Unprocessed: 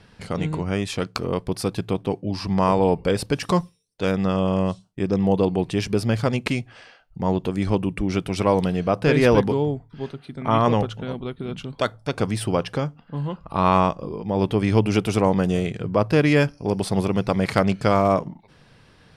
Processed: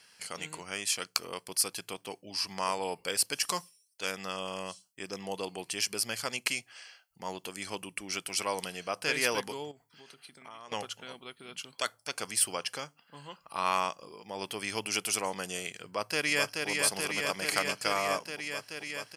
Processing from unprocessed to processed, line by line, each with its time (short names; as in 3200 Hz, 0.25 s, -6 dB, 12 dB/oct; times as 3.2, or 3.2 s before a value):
9.71–10.72 compressor 12:1, threshold -31 dBFS
15.85–16.68 echo throw 0.43 s, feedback 85%, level -3.5 dB
whole clip: differentiator; notch 3700 Hz, Q 5.7; gain +7 dB